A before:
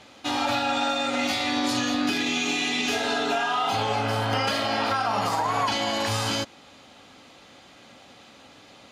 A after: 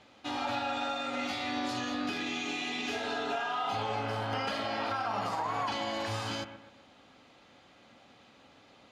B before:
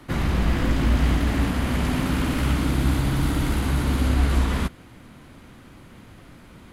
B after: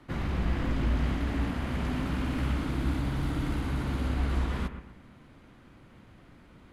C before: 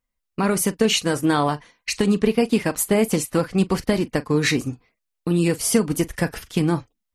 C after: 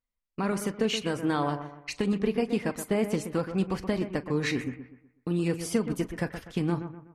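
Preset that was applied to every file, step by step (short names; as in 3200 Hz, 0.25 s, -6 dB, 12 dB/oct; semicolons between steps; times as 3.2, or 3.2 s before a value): high shelf 6600 Hz -11.5 dB; on a send: analogue delay 0.124 s, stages 2048, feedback 38%, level -10 dB; on the sum: gain -8 dB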